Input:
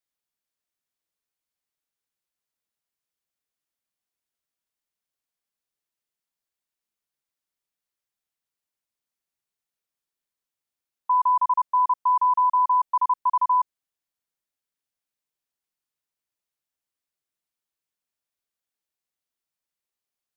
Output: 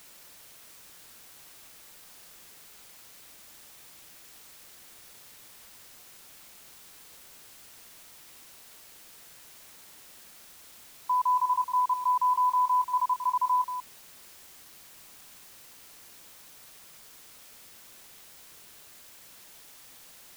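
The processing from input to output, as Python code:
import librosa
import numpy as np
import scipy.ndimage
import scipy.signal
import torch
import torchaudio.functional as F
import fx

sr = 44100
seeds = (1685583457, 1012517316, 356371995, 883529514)

p1 = fx.quant_dither(x, sr, seeds[0], bits=6, dither='triangular')
p2 = x + (p1 * 10.0 ** (-7.5 / 20.0))
p3 = p2 + 10.0 ** (-9.0 / 20.0) * np.pad(p2, (int(185 * sr / 1000.0), 0))[:len(p2)]
y = p3 * 10.0 ** (-8.5 / 20.0)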